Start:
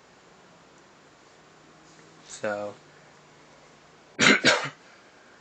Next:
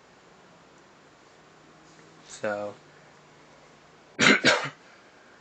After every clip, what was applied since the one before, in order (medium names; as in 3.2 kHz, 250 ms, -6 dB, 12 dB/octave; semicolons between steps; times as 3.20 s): treble shelf 5.7 kHz -4 dB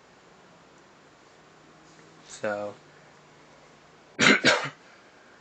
no audible change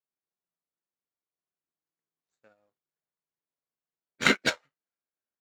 power-law waveshaper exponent 1.4; upward expansion 2.5:1, over -39 dBFS; trim +2.5 dB